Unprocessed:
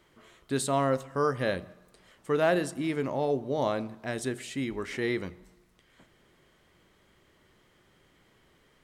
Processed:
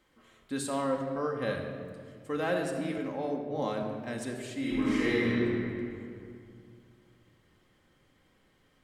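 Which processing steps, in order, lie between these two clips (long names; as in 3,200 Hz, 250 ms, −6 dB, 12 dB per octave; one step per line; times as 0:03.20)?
0:00.84–0:01.42: low-pass filter 2,400 Hz 6 dB per octave
0:04.59–0:05.27: thrown reverb, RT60 2.3 s, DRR −7.5 dB
rectangular room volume 3,700 cubic metres, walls mixed, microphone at 2.1 metres
0:02.98–0:03.83: multiband upward and downward expander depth 70%
level −6.5 dB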